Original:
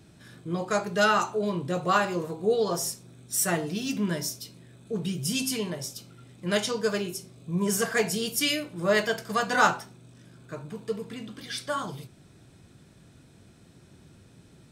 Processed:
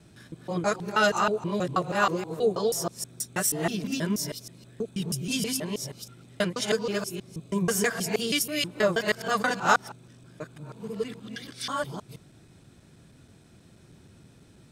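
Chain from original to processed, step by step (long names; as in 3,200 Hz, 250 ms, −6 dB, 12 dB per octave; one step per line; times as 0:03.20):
reversed piece by piece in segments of 160 ms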